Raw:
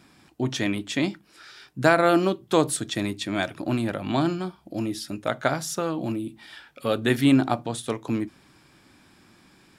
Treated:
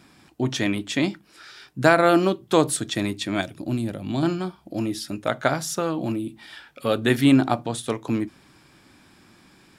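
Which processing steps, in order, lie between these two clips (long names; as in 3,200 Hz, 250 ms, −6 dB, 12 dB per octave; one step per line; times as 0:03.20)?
0:03.41–0:04.23: parametric band 1,300 Hz −12.5 dB 2.7 octaves
level +2 dB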